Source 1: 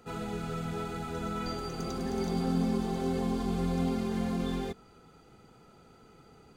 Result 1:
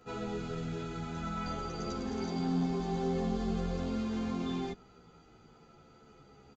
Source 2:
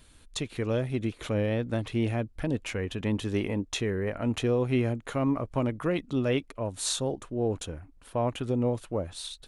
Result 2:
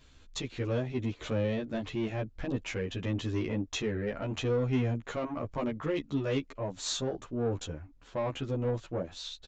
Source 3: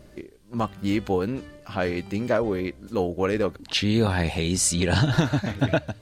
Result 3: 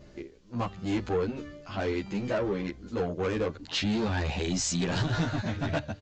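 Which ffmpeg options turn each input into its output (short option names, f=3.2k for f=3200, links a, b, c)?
-filter_complex "[0:a]aresample=16000,asoftclip=type=tanh:threshold=-22.5dB,aresample=44100,asplit=2[a][b];[b]adelay=11.8,afreqshift=-0.47[c];[a][c]amix=inputs=2:normalize=1,volume=1.5dB"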